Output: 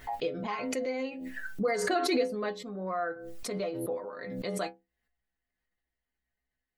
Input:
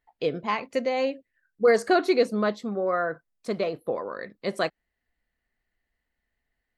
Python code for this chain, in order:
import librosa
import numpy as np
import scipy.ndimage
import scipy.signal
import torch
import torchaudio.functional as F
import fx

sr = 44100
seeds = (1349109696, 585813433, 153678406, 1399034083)

y = fx.stiff_resonator(x, sr, f0_hz=61.0, decay_s=0.34, stiffness=0.008)
y = fx.pre_swell(y, sr, db_per_s=32.0)